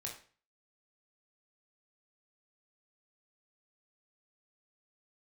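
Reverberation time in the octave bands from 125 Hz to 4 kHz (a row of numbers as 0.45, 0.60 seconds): 0.45, 0.40, 0.40, 0.40, 0.40, 0.35 seconds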